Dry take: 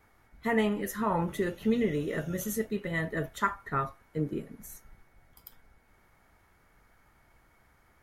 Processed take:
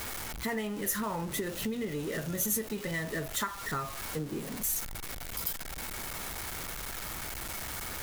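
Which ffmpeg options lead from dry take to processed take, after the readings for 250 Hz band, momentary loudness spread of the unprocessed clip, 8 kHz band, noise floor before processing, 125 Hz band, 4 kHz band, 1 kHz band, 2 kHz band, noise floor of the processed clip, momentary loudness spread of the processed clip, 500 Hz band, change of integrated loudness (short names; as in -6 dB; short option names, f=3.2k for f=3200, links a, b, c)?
-4.5 dB, 10 LU, +11.0 dB, -65 dBFS, -3.0 dB, +8.0 dB, -4.0 dB, -0.5 dB, -41 dBFS, 6 LU, -5.0 dB, -3.0 dB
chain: -af "aeval=exprs='val(0)+0.5*0.0158*sgn(val(0))':c=same,acompressor=threshold=-32dB:ratio=5,highshelf=f=4.3k:g=10"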